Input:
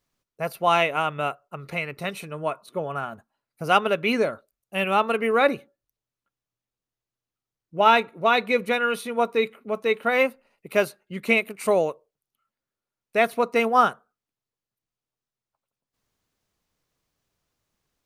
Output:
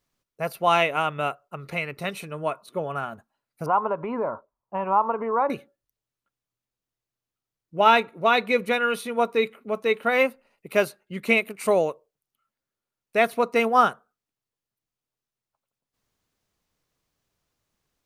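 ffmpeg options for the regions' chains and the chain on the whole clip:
ffmpeg -i in.wav -filter_complex "[0:a]asettb=1/sr,asplit=3[link_01][link_02][link_03];[link_01]atrim=end=3.664[link_04];[link_02]atrim=start=3.66:end=5.5,asetpts=PTS-STARTPTS,afade=type=in:duration=0.004:curve=qsin,afade=type=out:start_time=1.836:duration=0.004:curve=qsin,acompressor=threshold=-28dB:ratio=2.5:attack=3.2:release=140:knee=1:detection=peak,lowpass=frequency=980:width_type=q:width=10[link_05];[link_03]atrim=start=5.496[link_06];[link_04][link_05]acrossfade=duration=0.004:curve1=hsin:curve2=qsin[link_07];[link_07][link_06]acrossfade=duration=0.004:curve1=qsin:curve2=hsin" out.wav

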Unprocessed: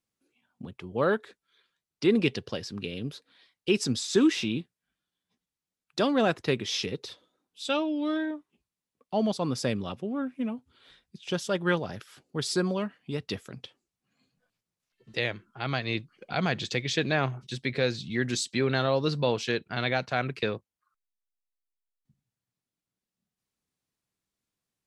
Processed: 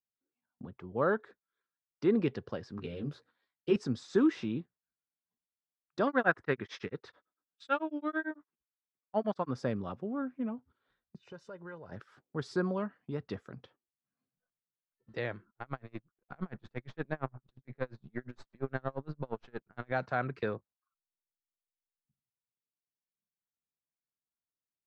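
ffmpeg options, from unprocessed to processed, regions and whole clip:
ffmpeg -i in.wav -filter_complex "[0:a]asettb=1/sr,asplit=3[link_01][link_02][link_03];[link_01]atrim=end=2.774[link_04];[link_02]atrim=start=2.77:end=3.76,asetpts=PTS-STARTPTS,afade=type=in:duration=0.004:curve=qsin,afade=type=out:start_time=0.986:duration=0.004:curve=qsin,highshelf=frequency=5100:gain=4.5,bandreject=frequency=60:width_type=h:width=6,bandreject=frequency=120:width_type=h:width=6,bandreject=frequency=180:width_type=h:width=6,asplit=2[link_05][link_06];[link_06]adelay=13,volume=-2.5dB[link_07];[link_05][link_07]amix=inputs=2:normalize=0,atrim=end_sample=43659[link_08];[link_03]atrim=start=3.756[link_09];[link_04][link_08]acrossfade=duration=0.004:curve1=hsin:curve2=qsin[link_10];[link_10][link_09]acrossfade=duration=0.004:curve1=qsin:curve2=hsin,asettb=1/sr,asplit=3[link_11][link_12][link_13];[link_11]atrim=end=6.074[link_14];[link_12]atrim=start=6.07:end=9.51,asetpts=PTS-STARTPTS,afade=type=in:duration=0.004:curve=qsin,afade=type=out:start_time=3.436:duration=0.004:curve=qsin,tremolo=f=9:d=1,equalizer=frequency=1700:width=1:gain=10.5[link_15];[link_13]atrim=start=9.506[link_16];[link_14][link_15]acrossfade=duration=0.004:curve1=hsin:curve2=qsin[link_17];[link_17][link_16]acrossfade=duration=0.004:curve1=qsin:curve2=hsin,asettb=1/sr,asplit=3[link_18][link_19][link_20];[link_18]atrim=end=11.174[link_21];[link_19]atrim=start=11.17:end=11.92,asetpts=PTS-STARTPTS,afade=type=in:duration=0.004:curve=qsin,afade=type=out:start_time=0.746:duration=0.004:curve=qsin,aecho=1:1:2:0.36,atrim=end_sample=33075,acompressor=threshold=-44dB:ratio=3:attack=3.2:release=140:knee=1:detection=peak,asuperstop=centerf=3300:order=20:qfactor=8[link_22];[link_20]atrim=start=11.916[link_23];[link_21][link_22]acrossfade=duration=0.004:curve1=hsin:curve2=qsin[link_24];[link_24][link_23]acrossfade=duration=0.004:curve1=qsin:curve2=hsin,asettb=1/sr,asplit=3[link_25][link_26][link_27];[link_25]atrim=end=15.504[link_28];[link_26]atrim=start=15.5:end=19.92,asetpts=PTS-STARTPTS,afade=type=in:duration=0.004:curve=qsin,afade=type=out:start_time=4.416:duration=0.004:curve=qsin,aeval=exprs='if(lt(val(0),0),0.447*val(0),val(0))':channel_layout=same,bass=frequency=250:gain=2,treble=frequency=4000:gain=-11,aeval=exprs='val(0)*pow(10,-35*(0.5-0.5*cos(2*PI*8.6*n/s))/20)':channel_layout=same[link_29];[link_27]atrim=start=19.916[link_30];[link_28][link_29]acrossfade=duration=0.004:curve1=hsin:curve2=qsin[link_31];[link_31][link_30]acrossfade=duration=0.004:curve1=qsin:curve2=hsin,agate=range=-13dB:threshold=-53dB:ratio=16:detection=peak,lowpass=5300,highshelf=frequency=2000:width_type=q:width=1.5:gain=-9.5,volume=-4.5dB" out.wav

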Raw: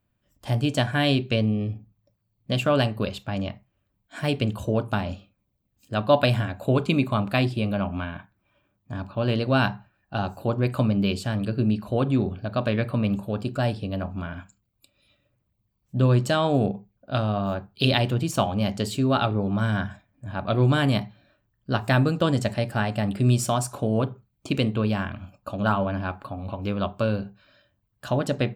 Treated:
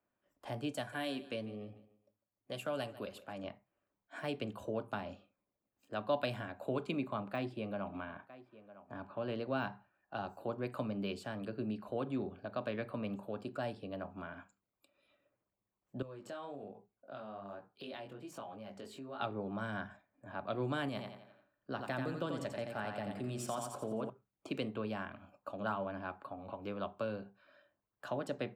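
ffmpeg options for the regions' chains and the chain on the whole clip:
ffmpeg -i in.wav -filter_complex "[0:a]asettb=1/sr,asplit=3[link_01][link_02][link_03];[link_01]atrim=end=0.724[link_04];[link_02]atrim=start=0.72:end=3.44,asetpts=PTS-STARTPTS,afade=type=in:duration=0.004:curve=qsin,afade=type=out:start_time=2.716:duration=0.004:curve=qsin,equalizer=frequency=11000:width_type=o:width=0.96:gain=14,flanger=delay=1.3:depth=2.8:regen=-59:speed=1:shape=sinusoidal,aecho=1:1:149|298|447:0.119|0.0392|0.0129,atrim=end_sample=119952[link_05];[link_03]atrim=start=3.436[link_06];[link_04][link_05]acrossfade=duration=0.004:curve1=hsin:curve2=qsin[link_07];[link_07][link_06]acrossfade=duration=0.004:curve1=qsin:curve2=hsin,asettb=1/sr,asplit=3[link_08][link_09][link_10];[link_08]atrim=end=6.914[link_11];[link_09]atrim=start=6.91:end=9.73,asetpts=PTS-STARTPTS,afade=type=in:duration=0.004:curve=qsin,afade=type=out:start_time=2.816:duration=0.004:curve=qsin,deesser=0.7,highshelf=frequency=3800:gain=-6.5,aecho=1:1:957:0.075,atrim=end_sample=124362[link_12];[link_10]atrim=start=9.726[link_13];[link_11][link_12]acrossfade=duration=0.004:curve1=hsin:curve2=qsin[link_14];[link_14][link_13]acrossfade=duration=0.004:curve1=qsin:curve2=hsin,asettb=1/sr,asplit=3[link_15][link_16][link_17];[link_15]atrim=end=16.024[link_18];[link_16]atrim=start=16.02:end=19.2,asetpts=PTS-STARTPTS,afade=type=in:duration=0.004:curve=qsin,afade=type=out:start_time=3.176:duration=0.004:curve=qsin,flanger=delay=17:depth=5.9:speed=1.2,acompressor=threshold=-35dB:ratio=3:attack=3.2:release=140:knee=1:detection=peak[link_19];[link_17]atrim=start=19.196[link_20];[link_18][link_19]acrossfade=duration=0.004:curve1=hsin:curve2=qsin[link_21];[link_21][link_20]acrossfade=duration=0.004:curve1=qsin:curve2=hsin,asettb=1/sr,asplit=3[link_22][link_23][link_24];[link_22]atrim=end=20.884[link_25];[link_23]atrim=start=20.88:end=24.1,asetpts=PTS-STARTPTS,afade=type=in:duration=0.004:curve=qsin,afade=type=out:start_time=3.216:duration=0.004:curve=qsin,acompressor=threshold=-22dB:ratio=2:attack=3.2:release=140:knee=1:detection=peak,aecho=1:1:87|174|261|348|435:0.531|0.207|0.0807|0.0315|0.0123,atrim=end_sample=142002[link_26];[link_24]atrim=start=24.096[link_27];[link_25][link_26]acrossfade=duration=0.004:curve1=hsin:curve2=qsin[link_28];[link_28][link_27]acrossfade=duration=0.004:curve1=qsin:curve2=hsin,acrossover=split=280 2100:gain=0.0891 1 0.2[link_29][link_30][link_31];[link_29][link_30][link_31]amix=inputs=3:normalize=0,acrossover=split=200|3000[link_32][link_33][link_34];[link_33]acompressor=threshold=-50dB:ratio=1.5[link_35];[link_32][link_35][link_34]amix=inputs=3:normalize=0,volume=-2.5dB" out.wav

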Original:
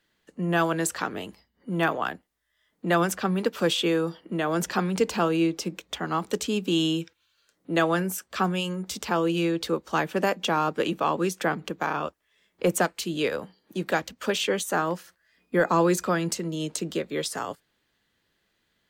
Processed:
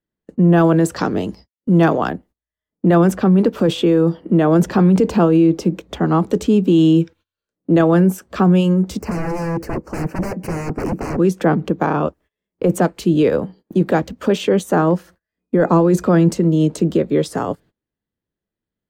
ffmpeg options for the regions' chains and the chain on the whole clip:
ffmpeg -i in.wav -filter_complex "[0:a]asettb=1/sr,asplit=3[link_01][link_02][link_03];[link_01]atrim=end=0.964[link_04];[link_02]atrim=start=0.96:end=2.1,asetpts=PTS-STARTPTS,afade=type=in:duration=0.004:curve=qsin,afade=type=out:start_time=1.136:duration=0.004:curve=qsin,equalizer=frequency=5400:width_type=o:width=0.71:gain=14,agate=range=-33dB:threshold=-51dB:ratio=3:release=100:detection=peak[link_05];[link_03]atrim=start=2.096[link_06];[link_04][link_05]acrossfade=duration=0.004:curve1=hsin:curve2=qsin[link_07];[link_07][link_06]acrossfade=duration=0.004:curve1=qsin:curve2=hsin,asettb=1/sr,asplit=3[link_08][link_09][link_10];[link_08]atrim=end=8.994[link_11];[link_09]atrim=start=8.99:end=11.19,asetpts=PTS-STARTPTS,afade=type=in:duration=0.004:curve=qsin,afade=type=out:start_time=2.196:duration=0.004:curve=qsin,aeval=exprs='0.0355*(abs(mod(val(0)/0.0355+3,4)-2)-1)':channel_layout=same,asuperstop=centerf=3500:order=4:qfactor=1.7[link_12];[link_10]atrim=start=11.186[link_13];[link_11][link_12]acrossfade=duration=0.004:curve1=hsin:curve2=qsin[link_14];[link_14][link_13]acrossfade=duration=0.004:curve1=qsin:curve2=hsin,agate=range=-24dB:threshold=-54dB:ratio=16:detection=peak,tiltshelf=frequency=910:gain=10,alimiter=limit=-14dB:level=0:latency=1:release=12,volume=8dB" out.wav

